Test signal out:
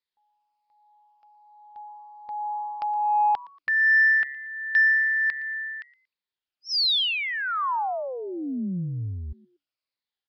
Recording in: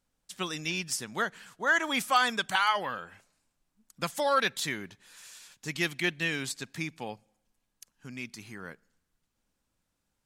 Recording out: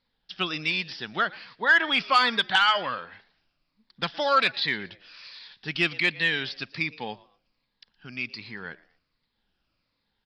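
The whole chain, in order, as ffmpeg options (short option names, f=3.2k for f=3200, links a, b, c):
-filter_complex "[0:a]afftfilt=real='re*pow(10,7/40*sin(2*PI*(0.98*log(max(b,1)*sr/1024/100)/log(2)-(-1.3)*(pts-256)/sr)))':imag='im*pow(10,7/40*sin(2*PI*(0.98*log(max(b,1)*sr/1024/100)/log(2)-(-1.3)*(pts-256)/sr)))':win_size=1024:overlap=0.75,acrossover=split=4300[a][b];[b]acompressor=threshold=-39dB:ratio=4:attack=1:release=60[c];[a][c]amix=inputs=2:normalize=0,highshelf=f=2k:g=9.5,aresample=11025,aresample=44100,asplit=2[d][e];[e]asplit=2[f][g];[f]adelay=116,afreqshift=140,volume=-22dB[h];[g]adelay=232,afreqshift=280,volume=-32.5dB[i];[h][i]amix=inputs=2:normalize=0[j];[d][j]amix=inputs=2:normalize=0,acontrast=82,volume=-6dB"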